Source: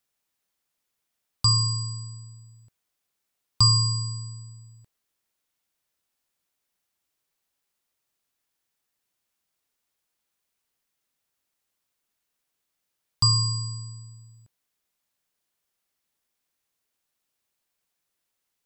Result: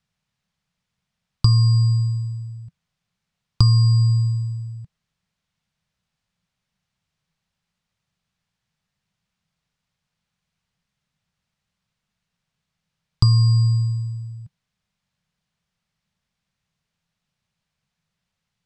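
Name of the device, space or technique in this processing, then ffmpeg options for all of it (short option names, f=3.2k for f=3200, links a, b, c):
jukebox: -af "lowpass=5.1k,lowshelf=f=230:t=q:w=3:g=10,acompressor=threshold=-17dB:ratio=5,volume=4dB"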